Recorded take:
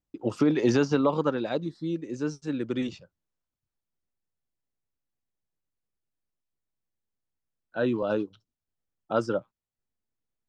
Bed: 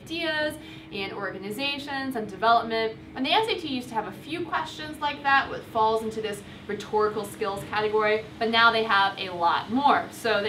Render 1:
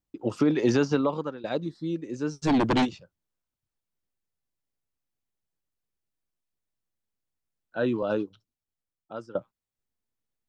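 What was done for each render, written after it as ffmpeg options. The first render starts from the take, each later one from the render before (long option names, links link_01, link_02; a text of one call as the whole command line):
ffmpeg -i in.wav -filter_complex "[0:a]asplit=3[link_01][link_02][link_03];[link_01]afade=type=out:start_time=2.41:duration=0.02[link_04];[link_02]aeval=exprs='0.126*sin(PI/2*3.16*val(0)/0.126)':channel_layout=same,afade=type=in:start_time=2.41:duration=0.02,afade=type=out:start_time=2.84:duration=0.02[link_05];[link_03]afade=type=in:start_time=2.84:duration=0.02[link_06];[link_04][link_05][link_06]amix=inputs=3:normalize=0,asplit=3[link_07][link_08][link_09];[link_07]atrim=end=1.44,asetpts=PTS-STARTPTS,afade=type=out:start_time=0.94:duration=0.5:silence=0.149624[link_10];[link_08]atrim=start=1.44:end=9.35,asetpts=PTS-STARTPTS,afade=type=in:duration=0.004:curve=hsin:silence=0.149624,afade=type=out:start_time=6.79:duration=1.12:silence=0.105925[link_11];[link_09]atrim=start=9.35,asetpts=PTS-STARTPTS,afade=type=in:duration=0.004:curve=hsin:silence=0.105925[link_12];[link_10][link_11][link_12]concat=n=3:v=0:a=1" out.wav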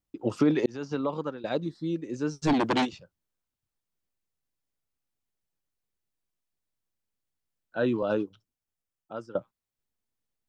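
ffmpeg -i in.wav -filter_complex "[0:a]asettb=1/sr,asplit=3[link_01][link_02][link_03];[link_01]atrim=end=2.534[link_04];[link_02]atrim=start=2.53:end=2.93,asetpts=PTS-STARTPTS,afade=type=in:duration=0.004:curve=qsin,afade=type=out:start_time=0.396:duration=0.004:curve=qsin,highpass=frequency=290:poles=1[link_05];[link_03]atrim=start=2.926[link_06];[link_04][link_05]acrossfade=duration=0.004:curve1=hsin:curve2=qsin[link_07];[link_07][link_06]acrossfade=duration=0.004:curve1=qsin:curve2=hsin,asettb=1/sr,asplit=3[link_08][link_09][link_10];[link_08]atrim=end=8.144[link_11];[link_09]atrim=start=8.14:end=9.25,asetpts=PTS-STARTPTS,afade=type=in:duration=0.004:curve=qsin,afade=type=out:start_time=1.106:duration=0.004:curve=qsin,equalizer=frequency=4100:width=5.3:gain=-6[link_12];[link_10]atrim=start=9.246[link_13];[link_11][link_12]acrossfade=duration=0.004:curve1=hsin:curve2=qsin[link_14];[link_14][link_13]acrossfade=duration=0.004:curve1=qsin:curve2=hsin,asplit=2[link_15][link_16];[link_15]atrim=end=0.66,asetpts=PTS-STARTPTS,afade=type=out:start_time=0.656:duration=0.004:curve=hsin[link_17];[link_16]atrim=start=0.66,asetpts=PTS-STARTPTS,afade=type=in:duration=0.63[link_18];[link_17][link_18]concat=n=2:v=0:a=1" out.wav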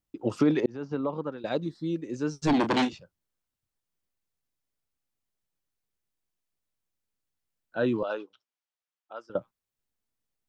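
ffmpeg -i in.wav -filter_complex "[0:a]asettb=1/sr,asplit=3[link_01][link_02][link_03];[link_01]atrim=end=0.604[link_04];[link_02]atrim=start=0.6:end=1.32,asetpts=PTS-STARTPTS,afade=type=in:duration=0.004:curve=qsin,afade=type=out:start_time=0.716:duration=0.004:curve=qsin,lowpass=frequency=1400:poles=1[link_05];[link_03]atrim=start=1.316[link_06];[link_04][link_05]acrossfade=duration=0.004:curve1=hsin:curve2=qsin[link_07];[link_07][link_06]acrossfade=duration=0.004:curve1=qsin:curve2=hsin,asettb=1/sr,asplit=3[link_08][link_09][link_10];[link_08]atrim=end=2.514[link_11];[link_09]atrim=start=2.51:end=2.94,asetpts=PTS-STARTPTS,afade=type=in:duration=0.004:curve=qsin,afade=type=out:start_time=0.426:duration=0.004:curve=qsin,asplit=2[link_12][link_13];[link_13]adelay=32,volume=-10dB[link_14];[link_12][link_14]amix=inputs=2:normalize=0,atrim=end_sample=18963[link_15];[link_10]atrim=start=2.936[link_16];[link_11][link_15]acrossfade=duration=0.004:curve1=hsin:curve2=qsin[link_17];[link_17][link_16]acrossfade=duration=0.004:curve1=qsin:curve2=hsin,asettb=1/sr,asplit=3[link_18][link_19][link_20];[link_18]atrim=end=8.034[link_21];[link_19]atrim=start=8.03:end=9.3,asetpts=PTS-STARTPTS,afade=type=in:duration=0.004:curve=qsin,afade=type=out:start_time=1.266:duration=0.004:curve=qsin,highpass=640,lowpass=5200[link_22];[link_20]atrim=start=9.296[link_23];[link_21][link_22]acrossfade=duration=0.004:curve1=hsin:curve2=qsin[link_24];[link_24][link_23]acrossfade=duration=0.004:curve1=qsin:curve2=hsin" out.wav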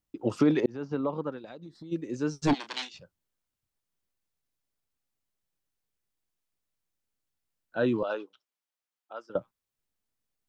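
ffmpeg -i in.wav -filter_complex "[0:a]asplit=3[link_01][link_02][link_03];[link_01]afade=type=out:start_time=1.38:duration=0.02[link_04];[link_02]acompressor=threshold=-41dB:ratio=10:attack=3.2:release=140:knee=1:detection=peak,afade=type=in:start_time=1.38:duration=0.02,afade=type=out:start_time=1.91:duration=0.02[link_05];[link_03]afade=type=in:start_time=1.91:duration=0.02[link_06];[link_04][link_05][link_06]amix=inputs=3:normalize=0,asplit=3[link_07][link_08][link_09];[link_07]afade=type=out:start_time=2.53:duration=0.02[link_10];[link_08]bandpass=frequency=4800:width_type=q:width=1,afade=type=in:start_time=2.53:duration=0.02,afade=type=out:start_time=2.94:duration=0.02[link_11];[link_09]afade=type=in:start_time=2.94:duration=0.02[link_12];[link_10][link_11][link_12]amix=inputs=3:normalize=0,asettb=1/sr,asplit=3[link_13][link_14][link_15];[link_13]atrim=end=8.144[link_16];[link_14]atrim=start=8.14:end=9.36,asetpts=PTS-STARTPTS,afade=type=in:duration=0.004:curve=qsin,afade=type=out:start_time=1.216:duration=0.004:curve=qsin,highpass=150[link_17];[link_15]atrim=start=9.356[link_18];[link_16][link_17]acrossfade=duration=0.004:curve1=hsin:curve2=qsin[link_19];[link_19][link_18]acrossfade=duration=0.004:curve1=qsin:curve2=hsin" out.wav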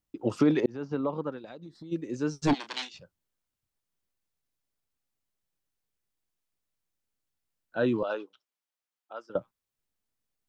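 ffmpeg -i in.wav -af anull out.wav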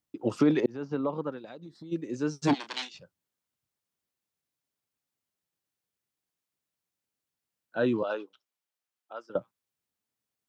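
ffmpeg -i in.wav -af "highpass=100" out.wav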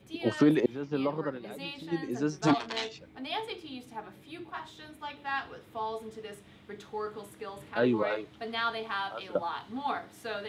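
ffmpeg -i in.wav -i bed.wav -filter_complex "[1:a]volume=-12.5dB[link_01];[0:a][link_01]amix=inputs=2:normalize=0" out.wav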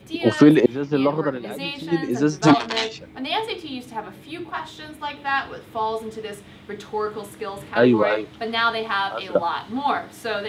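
ffmpeg -i in.wav -af "volume=10.5dB" out.wav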